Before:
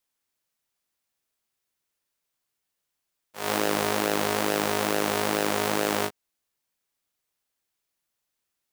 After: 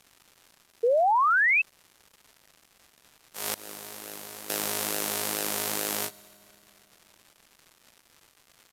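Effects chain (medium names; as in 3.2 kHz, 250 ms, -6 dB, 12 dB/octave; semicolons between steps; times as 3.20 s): 3.54–4.50 s: expander -14 dBFS; pre-emphasis filter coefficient 0.8; in parallel at +2.5 dB: compression, threshold -46 dBFS, peak gain reduction 17 dB; on the sum: crackle 370 per s -45 dBFS; resampled via 32 kHz; on a send at -18.5 dB: reverberation RT60 3.2 s, pre-delay 3 ms; 0.83–1.62 s: on the sum: painted sound rise 450–2700 Hz -24 dBFS; trim +2.5 dB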